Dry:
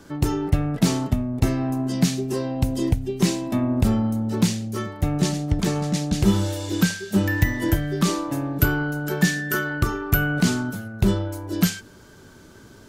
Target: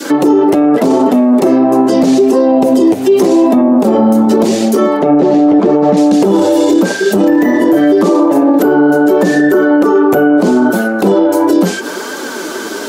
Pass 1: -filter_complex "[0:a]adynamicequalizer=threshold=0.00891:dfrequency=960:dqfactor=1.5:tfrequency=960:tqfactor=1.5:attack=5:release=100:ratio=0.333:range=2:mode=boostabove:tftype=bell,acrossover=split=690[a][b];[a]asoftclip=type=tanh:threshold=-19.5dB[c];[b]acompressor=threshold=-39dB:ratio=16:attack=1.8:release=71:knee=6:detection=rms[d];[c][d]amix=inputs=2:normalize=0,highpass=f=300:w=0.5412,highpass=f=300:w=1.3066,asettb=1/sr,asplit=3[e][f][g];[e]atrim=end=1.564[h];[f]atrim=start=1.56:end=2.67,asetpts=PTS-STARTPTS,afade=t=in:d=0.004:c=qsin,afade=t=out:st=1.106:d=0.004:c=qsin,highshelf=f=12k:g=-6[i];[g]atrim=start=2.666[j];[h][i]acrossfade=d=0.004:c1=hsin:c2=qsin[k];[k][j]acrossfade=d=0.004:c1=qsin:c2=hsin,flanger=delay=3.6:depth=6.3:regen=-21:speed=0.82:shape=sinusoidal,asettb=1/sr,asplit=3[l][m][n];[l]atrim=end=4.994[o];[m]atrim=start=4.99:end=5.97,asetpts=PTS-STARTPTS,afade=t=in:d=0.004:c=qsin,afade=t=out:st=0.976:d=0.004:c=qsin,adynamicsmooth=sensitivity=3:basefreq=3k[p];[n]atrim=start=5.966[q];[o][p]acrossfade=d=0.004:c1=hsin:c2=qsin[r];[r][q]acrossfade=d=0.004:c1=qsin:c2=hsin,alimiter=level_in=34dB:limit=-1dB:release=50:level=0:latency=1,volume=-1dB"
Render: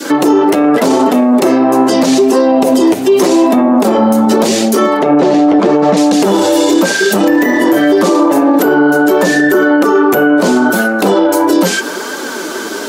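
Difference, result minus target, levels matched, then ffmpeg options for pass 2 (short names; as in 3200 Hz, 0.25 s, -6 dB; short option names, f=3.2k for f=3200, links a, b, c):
compressor: peak gain reduction -7 dB; soft clip: distortion +8 dB
-filter_complex "[0:a]adynamicequalizer=threshold=0.00891:dfrequency=960:dqfactor=1.5:tfrequency=960:tqfactor=1.5:attack=5:release=100:ratio=0.333:range=2:mode=boostabove:tftype=bell,acrossover=split=690[a][b];[a]asoftclip=type=tanh:threshold=-12dB[c];[b]acompressor=threshold=-46.5dB:ratio=16:attack=1.8:release=71:knee=6:detection=rms[d];[c][d]amix=inputs=2:normalize=0,highpass=f=300:w=0.5412,highpass=f=300:w=1.3066,asettb=1/sr,asplit=3[e][f][g];[e]atrim=end=1.564[h];[f]atrim=start=1.56:end=2.67,asetpts=PTS-STARTPTS,afade=t=in:d=0.004:c=qsin,afade=t=out:st=1.106:d=0.004:c=qsin,highshelf=f=12k:g=-6[i];[g]atrim=start=2.666[j];[h][i]acrossfade=d=0.004:c1=hsin:c2=qsin[k];[k][j]acrossfade=d=0.004:c1=qsin:c2=hsin,flanger=delay=3.6:depth=6.3:regen=-21:speed=0.82:shape=sinusoidal,asettb=1/sr,asplit=3[l][m][n];[l]atrim=end=4.994[o];[m]atrim=start=4.99:end=5.97,asetpts=PTS-STARTPTS,afade=t=in:d=0.004:c=qsin,afade=t=out:st=0.976:d=0.004:c=qsin,adynamicsmooth=sensitivity=3:basefreq=3k[p];[n]atrim=start=5.966[q];[o][p]acrossfade=d=0.004:c1=hsin:c2=qsin[r];[r][q]acrossfade=d=0.004:c1=qsin:c2=hsin,alimiter=level_in=34dB:limit=-1dB:release=50:level=0:latency=1,volume=-1dB"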